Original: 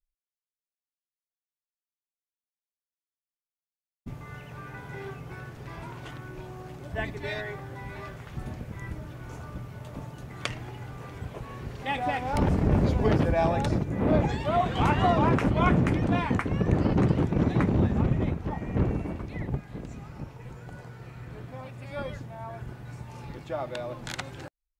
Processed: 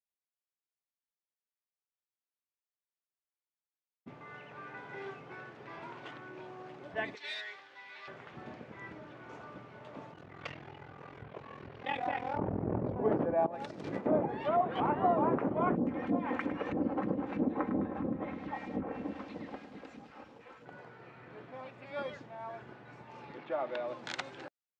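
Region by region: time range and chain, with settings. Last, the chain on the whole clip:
7.15–8.08 band-pass 4200 Hz, Q 1.4 + sample leveller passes 2
10.12–12.96 bell 81 Hz +15 dB 0.81 oct + ring modulator 21 Hz
13.46–14.06 switching spikes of -29.5 dBFS + negative-ratio compressor -31 dBFS, ratio -0.5
15.75–20.66 comb 3.8 ms, depth 57% + phaser stages 2, 3.1 Hz, lowest notch 130–2300 Hz + lo-fi delay 0.104 s, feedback 80%, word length 8-bit, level -11 dB
23.38–23.88 zero-crossing step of -44 dBFS + BPF 160–2900 Hz
whole clip: treble ducked by the level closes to 970 Hz, closed at -21 dBFS; HPF 290 Hz 12 dB/oct; low-pass opened by the level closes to 2400 Hz, open at -28 dBFS; gain -2.5 dB

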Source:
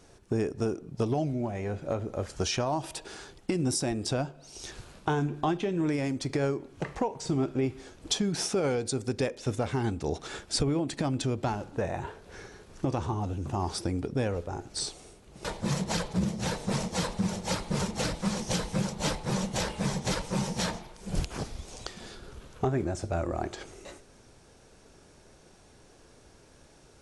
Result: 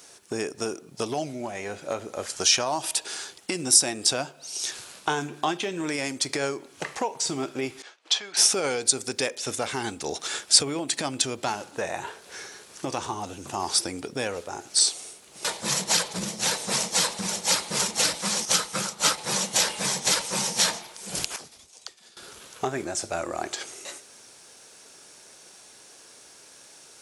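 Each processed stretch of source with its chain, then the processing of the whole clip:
7.82–8.37 BPF 680–3400 Hz + expander -55 dBFS
18.45–19.18 bell 1300 Hz +11 dB 0.29 oct + upward expander, over -38 dBFS
21.36–22.17 expander -34 dBFS + compressor, threshold -43 dBFS + dispersion lows, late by 46 ms, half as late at 360 Hz
whole clip: HPF 160 Hz 6 dB/oct; tilt +3.5 dB/oct; gain +4.5 dB

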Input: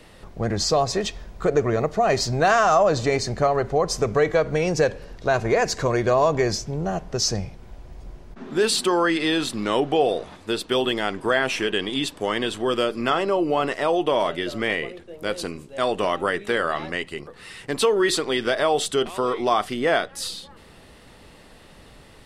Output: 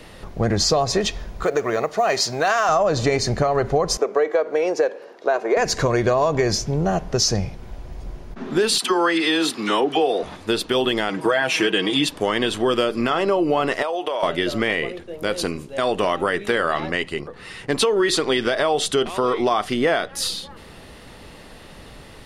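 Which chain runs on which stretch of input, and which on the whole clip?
1.44–2.69 HPF 650 Hz 6 dB/oct + companded quantiser 8-bit
3.97–5.57 HPF 350 Hz 24 dB/oct + high shelf 2000 Hz -12 dB
8.78–10.23 HPF 270 Hz + bell 580 Hz -8 dB 0.25 oct + dispersion lows, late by 46 ms, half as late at 1100 Hz
11.09–12.09 HPF 130 Hz + comb 6.3 ms, depth 74%
13.82–14.23 Chebyshev high-pass 540 Hz + compressor 10:1, threshold -26 dBFS
16.8–19.8 LPF 11000 Hz + mismatched tape noise reduction decoder only
whole clip: notch 7900 Hz, Q 13; compressor, threshold -21 dBFS; maximiser +13 dB; gain -7 dB

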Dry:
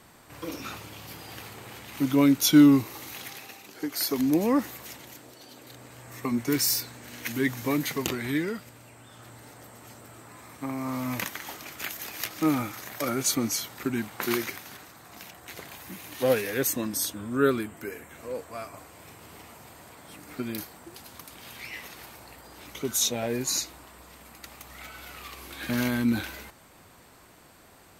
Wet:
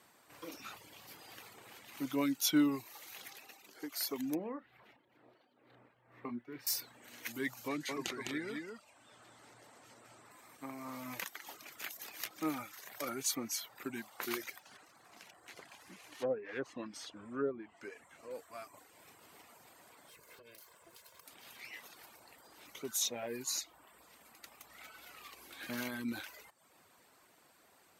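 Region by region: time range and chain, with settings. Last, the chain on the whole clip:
4.35–6.67 tremolo 2.1 Hz, depth 60% + air absorption 490 m + doubler 33 ms -10.5 dB
7.68–10.31 LPF 8000 Hz + echo 0.207 s -3.5 dB
14.59–18.31 median filter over 3 samples + notch 3700 Hz, Q 22 + treble ducked by the level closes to 720 Hz, closed at -20 dBFS
20.09–21.26 minimum comb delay 1.9 ms + compressor 16:1, threshold -41 dBFS
whole clip: HPF 360 Hz 6 dB/oct; reverb removal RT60 0.6 s; gain -8.5 dB

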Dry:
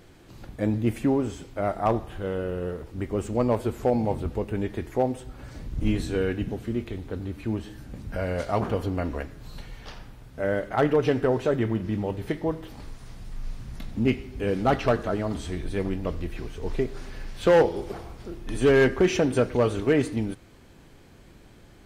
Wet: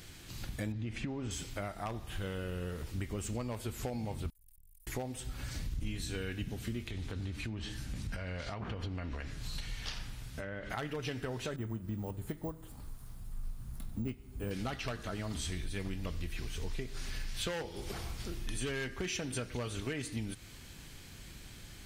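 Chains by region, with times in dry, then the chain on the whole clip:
0.72–1.31 compressor, threshold -25 dBFS + air absorption 140 m
4.3–4.87 inverse Chebyshev band-stop 130–2300 Hz, stop band 80 dB + tube stage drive 59 dB, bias 0.4
6.83–10.7 treble ducked by the level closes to 2400 Hz, closed at -21.5 dBFS + compressor, threshold -32 dBFS
11.56–14.51 band shelf 3600 Hz -12.5 dB 2.4 oct + careless resampling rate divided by 2×, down none, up hold + upward expander, over -33 dBFS
whole clip: passive tone stack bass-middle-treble 5-5-5; compressor 6:1, threshold -50 dBFS; bell 1000 Hz -4 dB 2.3 oct; gain +16 dB

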